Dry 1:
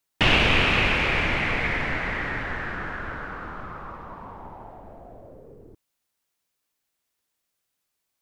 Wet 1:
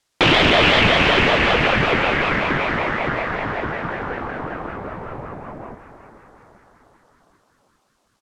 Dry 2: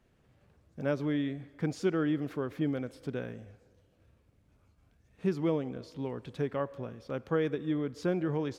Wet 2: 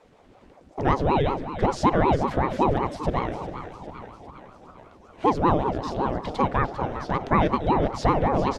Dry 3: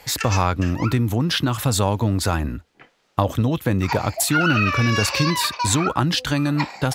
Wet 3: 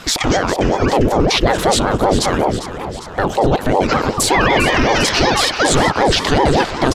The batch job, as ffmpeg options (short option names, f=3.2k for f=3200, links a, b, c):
-filter_complex "[0:a]lowpass=8k,bandreject=f=2.2k:w=12,asplit=2[a][b];[b]acompressor=threshold=-35dB:ratio=6,volume=-1.5dB[c];[a][c]amix=inputs=2:normalize=0,alimiter=limit=-12dB:level=0:latency=1:release=11,acontrast=26,asplit=8[d][e][f][g][h][i][j][k];[e]adelay=402,afreqshift=65,volume=-12dB[l];[f]adelay=804,afreqshift=130,volume=-16.6dB[m];[g]adelay=1206,afreqshift=195,volume=-21.2dB[n];[h]adelay=1608,afreqshift=260,volume=-25.7dB[o];[i]adelay=2010,afreqshift=325,volume=-30.3dB[p];[j]adelay=2412,afreqshift=390,volume=-34.9dB[q];[k]adelay=2814,afreqshift=455,volume=-39.5dB[r];[d][l][m][n][o][p][q][r]amix=inputs=8:normalize=0,aeval=exprs='val(0)*sin(2*PI*410*n/s+410*0.7/5.3*sin(2*PI*5.3*n/s))':c=same,volume=4.5dB"